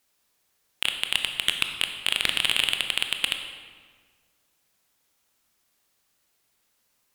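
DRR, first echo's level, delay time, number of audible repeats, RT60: 5.0 dB, no echo, no echo, no echo, 1.6 s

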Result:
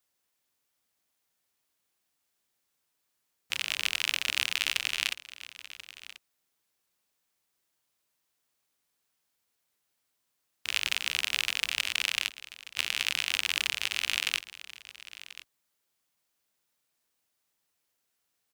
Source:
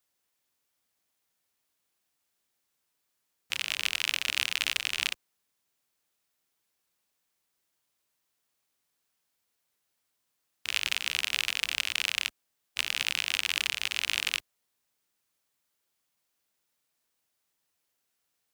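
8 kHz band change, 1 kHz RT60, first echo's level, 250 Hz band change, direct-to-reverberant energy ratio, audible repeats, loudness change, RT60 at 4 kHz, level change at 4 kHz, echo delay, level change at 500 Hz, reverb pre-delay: 0.0 dB, no reverb, -16.5 dB, 0.0 dB, no reverb, 1, 0.0 dB, no reverb, 0.0 dB, 1036 ms, 0.0 dB, no reverb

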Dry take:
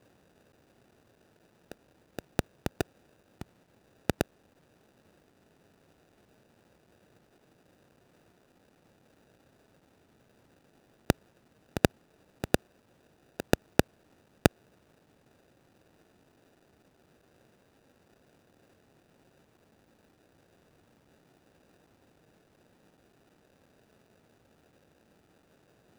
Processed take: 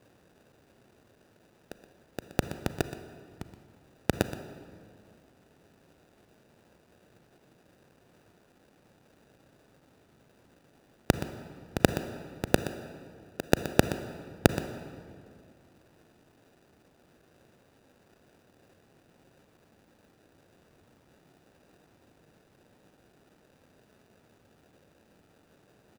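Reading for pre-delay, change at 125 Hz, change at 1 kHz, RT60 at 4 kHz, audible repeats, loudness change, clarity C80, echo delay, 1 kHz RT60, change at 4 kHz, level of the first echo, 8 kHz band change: 32 ms, +2.5 dB, +2.0 dB, 1.5 s, 1, +0.5 dB, 10.0 dB, 123 ms, 2.1 s, +2.0 dB, -13.5 dB, +2.0 dB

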